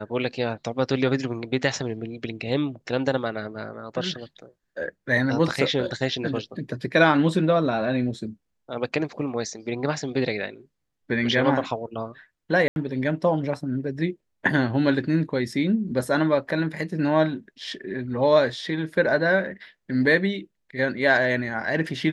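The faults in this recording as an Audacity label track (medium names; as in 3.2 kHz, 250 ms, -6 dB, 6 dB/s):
12.680000	12.760000	dropout 81 ms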